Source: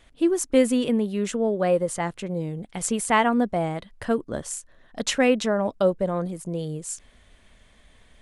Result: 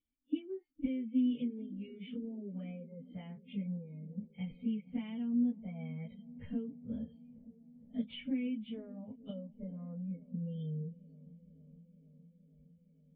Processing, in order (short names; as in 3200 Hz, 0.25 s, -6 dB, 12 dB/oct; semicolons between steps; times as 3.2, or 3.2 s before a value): spectral noise reduction 29 dB; compressor 16:1, threshold -30 dBFS, peak gain reduction 18 dB; plain phase-vocoder stretch 1.6×; vocal tract filter i; dark delay 0.463 s, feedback 75%, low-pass 580 Hz, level -19 dB; gain +7 dB